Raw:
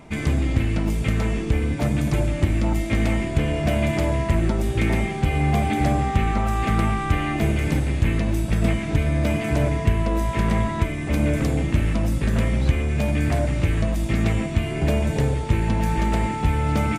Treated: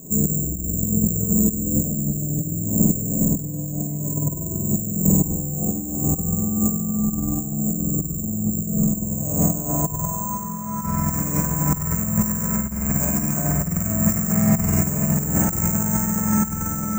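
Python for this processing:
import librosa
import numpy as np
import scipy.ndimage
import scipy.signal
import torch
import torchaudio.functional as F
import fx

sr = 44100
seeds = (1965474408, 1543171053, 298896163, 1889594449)

y = fx.comb(x, sr, ms=7.2, depth=0.66, at=(2.21, 4.28))
y = fx.echo_diffused(y, sr, ms=823, feedback_pct=53, wet_db=-10.0)
y = fx.filter_sweep_lowpass(y, sr, from_hz=430.0, to_hz=1400.0, start_s=8.48, end_s=10.82, q=2.0)
y = (np.kron(y[::6], np.eye(6)[0]) * 6)[:len(y)]
y = fx.rev_spring(y, sr, rt60_s=1.7, pass_ms=(47,), chirp_ms=25, drr_db=-7.0)
y = fx.over_compress(y, sr, threshold_db=-13.0, ratio=-0.5)
y = fx.peak_eq(y, sr, hz=180.0, db=14.0, octaves=0.42)
y = y * 10.0 ** (-10.5 / 20.0)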